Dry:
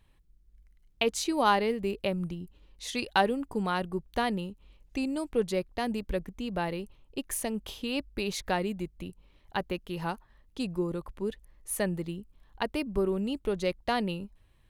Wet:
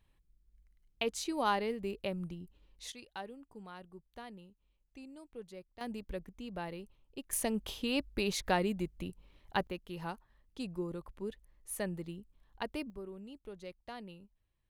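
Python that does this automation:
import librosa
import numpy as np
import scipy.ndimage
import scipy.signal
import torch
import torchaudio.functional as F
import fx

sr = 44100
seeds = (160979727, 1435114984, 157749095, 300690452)

y = fx.gain(x, sr, db=fx.steps((0.0, -7.0), (2.92, -19.5), (5.81, -9.5), (7.33, -1.0), (9.67, -7.5), (12.9, -17.5)))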